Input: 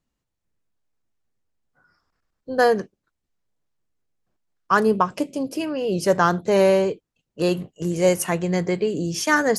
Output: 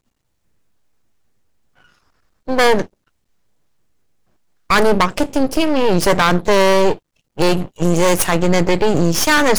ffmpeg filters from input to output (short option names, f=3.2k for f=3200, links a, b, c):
-af "aeval=exprs='max(val(0),0)':c=same,apsyclip=18.5dB,volume=-4.5dB"